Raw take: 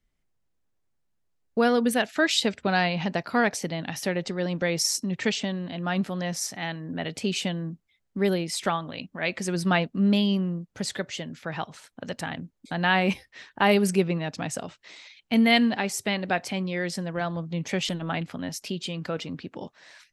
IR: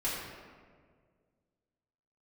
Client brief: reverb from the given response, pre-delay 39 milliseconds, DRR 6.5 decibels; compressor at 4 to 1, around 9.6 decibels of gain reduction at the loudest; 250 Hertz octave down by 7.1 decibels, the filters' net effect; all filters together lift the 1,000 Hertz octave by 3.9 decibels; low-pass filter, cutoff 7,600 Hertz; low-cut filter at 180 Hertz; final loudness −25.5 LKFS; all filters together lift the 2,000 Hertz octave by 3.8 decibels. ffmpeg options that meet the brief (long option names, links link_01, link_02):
-filter_complex "[0:a]highpass=180,lowpass=7600,equalizer=frequency=250:width_type=o:gain=-7.5,equalizer=frequency=1000:width_type=o:gain=5.5,equalizer=frequency=2000:width_type=o:gain=3,acompressor=threshold=-25dB:ratio=4,asplit=2[link_01][link_02];[1:a]atrim=start_sample=2205,adelay=39[link_03];[link_02][link_03]afir=irnorm=-1:irlink=0,volume=-13dB[link_04];[link_01][link_04]amix=inputs=2:normalize=0,volume=5dB"